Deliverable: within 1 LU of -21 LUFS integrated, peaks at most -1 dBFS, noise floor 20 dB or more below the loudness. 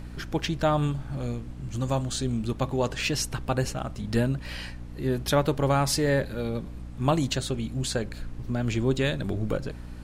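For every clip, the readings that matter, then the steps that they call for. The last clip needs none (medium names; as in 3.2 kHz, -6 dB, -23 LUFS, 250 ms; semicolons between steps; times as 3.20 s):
hum 60 Hz; highest harmonic 300 Hz; hum level -38 dBFS; noise floor -40 dBFS; noise floor target -48 dBFS; loudness -28.0 LUFS; peak level -10.0 dBFS; loudness target -21.0 LUFS
-> hum notches 60/120/180/240/300 Hz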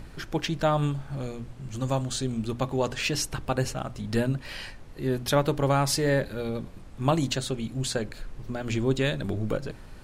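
hum not found; noise floor -45 dBFS; noise floor target -49 dBFS
-> noise print and reduce 6 dB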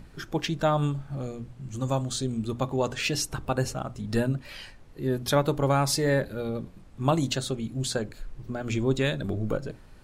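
noise floor -49 dBFS; loudness -28.5 LUFS; peak level -10.5 dBFS; loudness target -21.0 LUFS
-> trim +7.5 dB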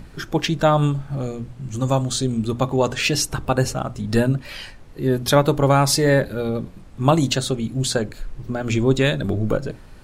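loudness -21.0 LUFS; peak level -3.0 dBFS; noise floor -42 dBFS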